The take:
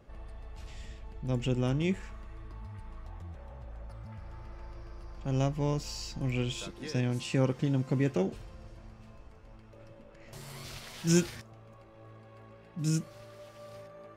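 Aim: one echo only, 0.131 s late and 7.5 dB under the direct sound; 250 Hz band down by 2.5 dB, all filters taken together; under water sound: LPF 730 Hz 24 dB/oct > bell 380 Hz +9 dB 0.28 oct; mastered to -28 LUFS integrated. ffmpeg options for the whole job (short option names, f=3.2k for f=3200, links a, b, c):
-af "lowpass=f=730:w=0.5412,lowpass=f=730:w=1.3066,equalizer=f=250:t=o:g=-7,equalizer=f=380:t=o:w=0.28:g=9,aecho=1:1:131:0.422,volume=5dB"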